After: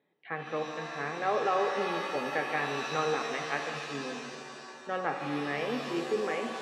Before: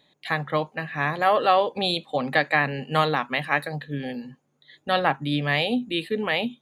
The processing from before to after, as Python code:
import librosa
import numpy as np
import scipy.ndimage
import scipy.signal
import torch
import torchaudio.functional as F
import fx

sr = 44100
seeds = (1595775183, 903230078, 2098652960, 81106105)

y = fx.cabinet(x, sr, low_hz=210.0, low_slope=12, high_hz=2100.0, hz=(250.0, 410.0, 640.0, 1000.0, 1800.0), db=(-4, 6, -6, -7, -5))
y = fx.rev_shimmer(y, sr, seeds[0], rt60_s=2.3, semitones=7, shimmer_db=-2, drr_db=4.5)
y = F.gain(torch.from_numpy(y), -7.0).numpy()